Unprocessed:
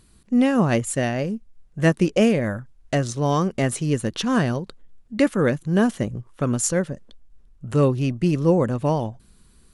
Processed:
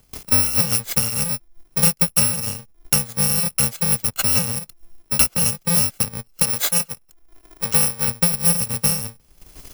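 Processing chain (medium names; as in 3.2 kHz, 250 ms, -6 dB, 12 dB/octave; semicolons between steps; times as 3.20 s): bit-reversed sample order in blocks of 128 samples; gate with hold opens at -45 dBFS; 6.42–8.08 s: bass shelf 210 Hz -11.5 dB; transient shaper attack +7 dB, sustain -9 dB; three bands compressed up and down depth 70%; trim -1 dB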